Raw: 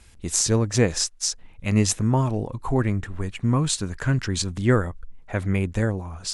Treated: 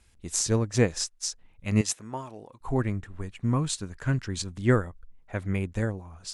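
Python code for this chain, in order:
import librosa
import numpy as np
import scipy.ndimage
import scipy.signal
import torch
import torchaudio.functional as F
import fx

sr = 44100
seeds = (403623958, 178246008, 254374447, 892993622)

y = fx.highpass(x, sr, hz=610.0, slope=6, at=(1.81, 2.61))
y = fx.upward_expand(y, sr, threshold_db=-31.0, expansion=1.5)
y = F.gain(torch.from_numpy(y), -2.0).numpy()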